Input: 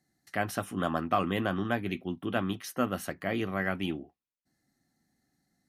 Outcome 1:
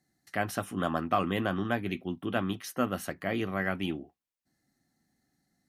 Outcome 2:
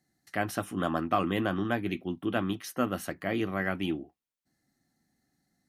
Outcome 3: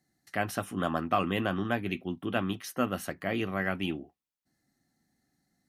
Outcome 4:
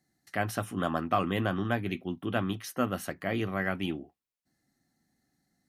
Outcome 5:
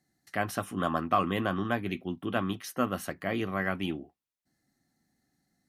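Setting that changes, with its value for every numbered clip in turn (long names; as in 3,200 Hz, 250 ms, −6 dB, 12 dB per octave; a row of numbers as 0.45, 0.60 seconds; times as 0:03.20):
dynamic equaliser, frequency: 7,100, 320, 2,700, 110, 1,100 Hertz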